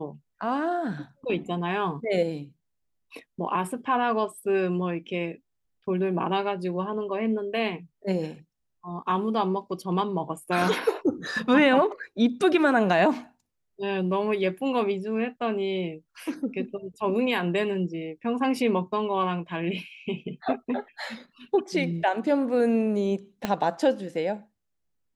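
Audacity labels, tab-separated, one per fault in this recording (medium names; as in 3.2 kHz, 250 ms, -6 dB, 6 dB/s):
23.450000	23.450000	pop -12 dBFS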